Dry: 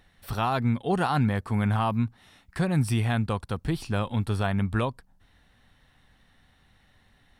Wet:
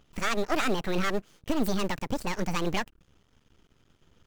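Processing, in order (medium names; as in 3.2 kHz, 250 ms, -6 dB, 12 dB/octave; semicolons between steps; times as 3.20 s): speed mistake 45 rpm record played at 78 rpm; in parallel at -8.5 dB: short-mantissa float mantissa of 2-bit; on the sum: half-wave rectifier; tape noise reduction on one side only decoder only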